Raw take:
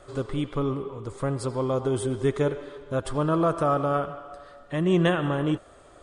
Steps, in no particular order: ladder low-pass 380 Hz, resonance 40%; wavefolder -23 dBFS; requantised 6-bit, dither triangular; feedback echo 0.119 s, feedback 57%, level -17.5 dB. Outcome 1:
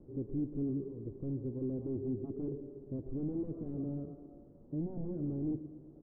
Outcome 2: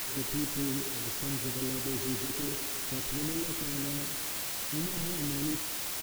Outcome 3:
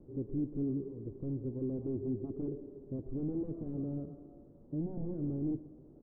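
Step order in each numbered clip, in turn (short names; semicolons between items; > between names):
feedback echo > requantised > wavefolder > ladder low-pass; wavefolder > ladder low-pass > requantised > feedback echo; wavefolder > feedback echo > requantised > ladder low-pass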